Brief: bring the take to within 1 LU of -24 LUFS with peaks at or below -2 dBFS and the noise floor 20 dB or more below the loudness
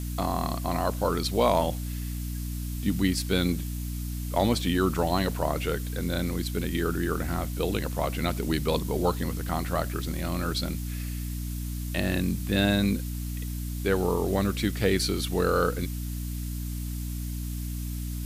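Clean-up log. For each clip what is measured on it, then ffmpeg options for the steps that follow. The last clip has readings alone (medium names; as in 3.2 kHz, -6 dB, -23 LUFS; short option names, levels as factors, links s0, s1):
hum 60 Hz; highest harmonic 300 Hz; hum level -30 dBFS; noise floor -33 dBFS; noise floor target -49 dBFS; loudness -28.5 LUFS; peak level -10.0 dBFS; loudness target -24.0 LUFS
-> -af "bandreject=f=60:t=h:w=4,bandreject=f=120:t=h:w=4,bandreject=f=180:t=h:w=4,bandreject=f=240:t=h:w=4,bandreject=f=300:t=h:w=4"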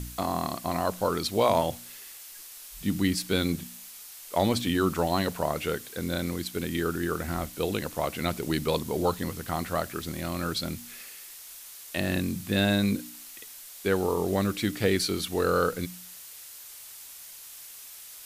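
hum not found; noise floor -46 dBFS; noise floor target -49 dBFS
-> -af "afftdn=nr=6:nf=-46"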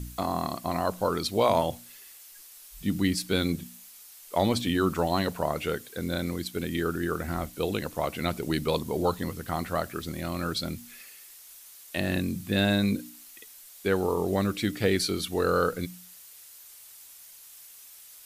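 noise floor -50 dBFS; loudness -28.5 LUFS; peak level -10.5 dBFS; loudness target -24.0 LUFS
-> -af "volume=1.68"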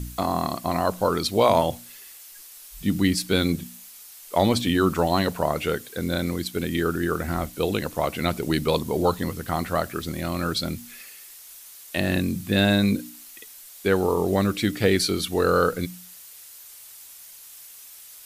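loudness -24.0 LUFS; peak level -6.0 dBFS; noise floor -45 dBFS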